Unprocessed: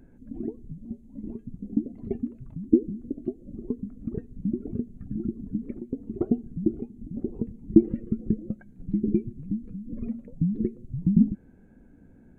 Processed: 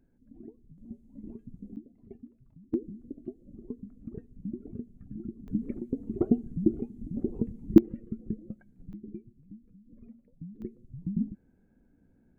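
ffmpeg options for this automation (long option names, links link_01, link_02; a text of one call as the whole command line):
ffmpeg -i in.wav -af "asetnsamples=nb_out_samples=441:pad=0,asendcmd='0.78 volume volume -7dB;1.76 volume volume -17.5dB;2.74 volume volume -9dB;5.48 volume volume 0dB;7.78 volume volume -9dB;8.93 volume volume -18.5dB;10.62 volume volume -11dB',volume=-14.5dB" out.wav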